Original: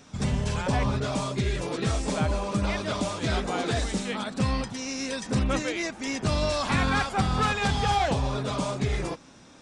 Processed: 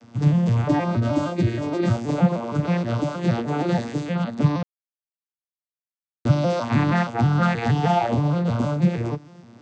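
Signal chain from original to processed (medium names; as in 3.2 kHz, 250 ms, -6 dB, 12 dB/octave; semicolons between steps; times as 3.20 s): vocoder on a broken chord major triad, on A#2, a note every 157 ms; 0.69–1.96 s: comb 3.2 ms, depth 68%; 4.63–6.25 s: mute; trim +8 dB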